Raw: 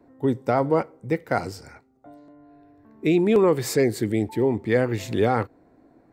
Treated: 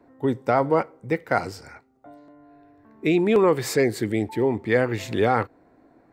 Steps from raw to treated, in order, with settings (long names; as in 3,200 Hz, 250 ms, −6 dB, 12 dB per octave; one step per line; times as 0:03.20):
parametric band 1,600 Hz +5.5 dB 3 octaves
level −2 dB